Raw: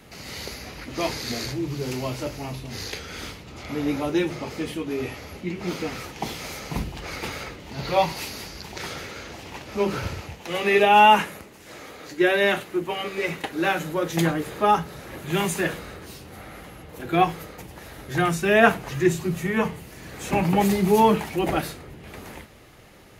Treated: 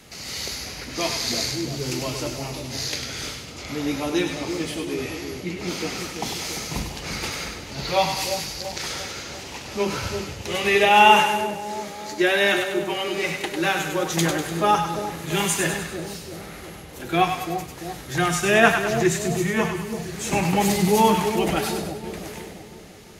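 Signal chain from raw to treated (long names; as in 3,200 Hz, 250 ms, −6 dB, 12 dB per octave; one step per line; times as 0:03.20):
parametric band 6,500 Hz +9 dB 2 octaves
echo with a time of its own for lows and highs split 720 Hz, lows 342 ms, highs 99 ms, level −6 dB
level −1 dB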